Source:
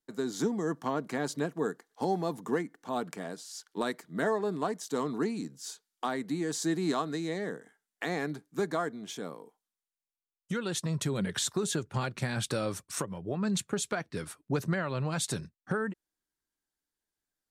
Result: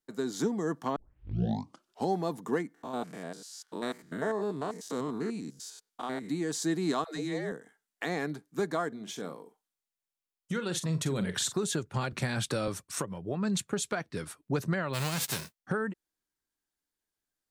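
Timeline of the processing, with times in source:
0:00.96: tape start 1.13 s
0:02.74–0:06.30: spectrum averaged block by block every 100 ms
0:07.04–0:07.52: all-pass dispersion lows, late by 136 ms, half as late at 350 Hz
0:08.88–0:11.59: double-tracking delay 44 ms −11 dB
0:12.12–0:12.68: multiband upward and downward compressor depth 40%
0:14.93–0:15.58: spectral envelope flattened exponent 0.3

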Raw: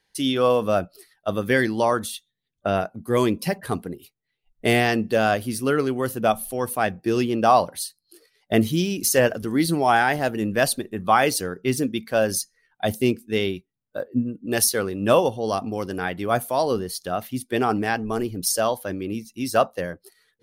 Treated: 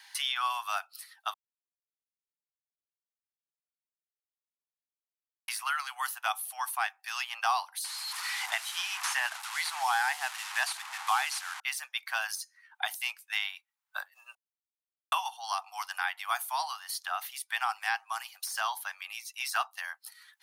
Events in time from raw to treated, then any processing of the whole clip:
0:01.34–0:05.48: silence
0:07.84–0:11.60: linear delta modulator 64 kbit/s, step −29 dBFS
0:14.35–0:15.12: silence
whole clip: de-essing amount 45%; Butterworth high-pass 800 Hz 72 dB per octave; multiband upward and downward compressor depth 70%; level −3 dB

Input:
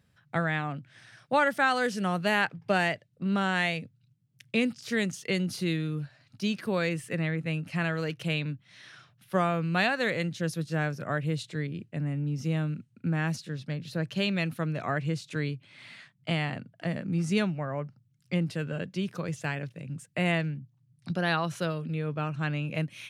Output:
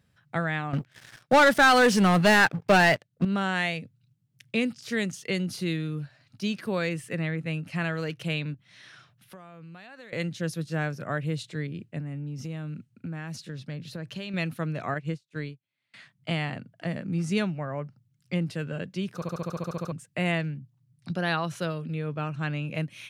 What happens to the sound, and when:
0:00.73–0:03.25: leveller curve on the samples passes 3
0:08.54–0:10.13: downward compressor, threshold −44 dBFS
0:11.99–0:14.34: downward compressor 5 to 1, threshold −32 dBFS
0:14.94–0:15.94: expander for the loud parts 2.5 to 1, over −48 dBFS
0:19.15: stutter in place 0.07 s, 11 plays

